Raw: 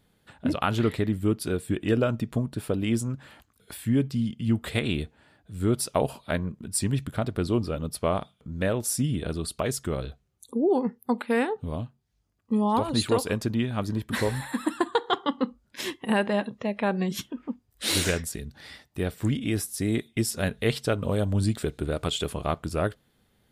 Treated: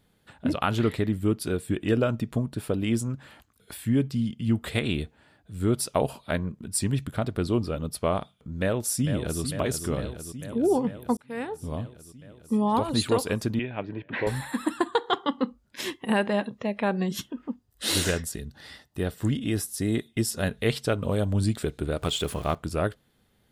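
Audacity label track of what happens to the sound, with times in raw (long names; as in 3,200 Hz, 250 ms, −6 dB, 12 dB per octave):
8.590000	9.420000	delay throw 450 ms, feedback 75%, level −8.5 dB
11.170000	11.770000	fade in
13.590000	14.270000	loudspeaker in its box 170–2,700 Hz, peaks and dips at 220 Hz −10 dB, 1,200 Hz −9 dB, 2,500 Hz +6 dB
16.990000	20.520000	notch filter 2,300 Hz, Q 8.1
22.020000	22.550000	converter with a step at zero of −40 dBFS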